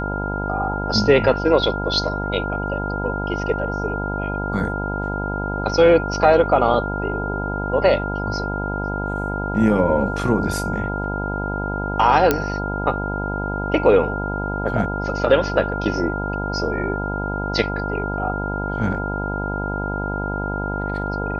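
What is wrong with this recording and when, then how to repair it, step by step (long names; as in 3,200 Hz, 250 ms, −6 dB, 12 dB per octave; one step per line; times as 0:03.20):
mains buzz 50 Hz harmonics 20 −26 dBFS
whistle 1,400 Hz −27 dBFS
0:12.31: click −2 dBFS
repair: click removal
notch filter 1,400 Hz, Q 30
hum removal 50 Hz, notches 20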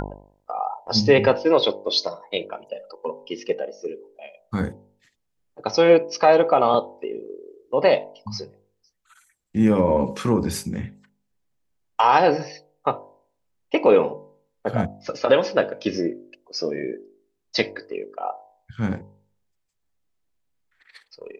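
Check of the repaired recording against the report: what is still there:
none of them is left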